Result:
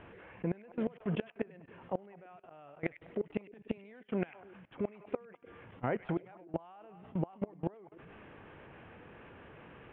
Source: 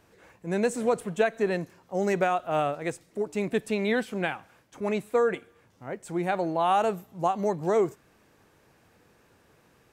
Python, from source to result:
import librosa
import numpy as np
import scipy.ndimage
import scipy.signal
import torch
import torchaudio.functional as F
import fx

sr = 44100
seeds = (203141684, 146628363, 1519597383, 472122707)

y = scipy.signal.sosfilt(scipy.signal.butter(12, 3200.0, 'lowpass', fs=sr, output='sos'), x)
y = fx.gate_flip(y, sr, shuts_db=-20.0, range_db=-29)
y = fx.echo_stepped(y, sr, ms=100, hz=2500.0, octaves=-1.4, feedback_pct=70, wet_db=-11.0)
y = fx.level_steps(y, sr, step_db=22)
y = y * 10.0 ** (12.5 / 20.0)